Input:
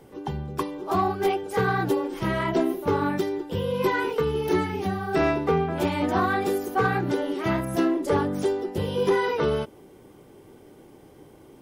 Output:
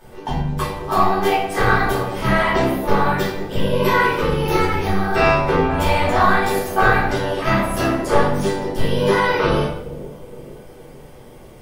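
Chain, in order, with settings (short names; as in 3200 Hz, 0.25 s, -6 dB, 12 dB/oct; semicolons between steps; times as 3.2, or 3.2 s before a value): bell 310 Hz -15 dB 0.8 oct; AM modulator 100 Hz, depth 75%; split-band echo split 660 Hz, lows 0.467 s, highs 81 ms, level -15 dB; shoebox room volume 100 m³, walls mixed, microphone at 2.6 m; gain +4 dB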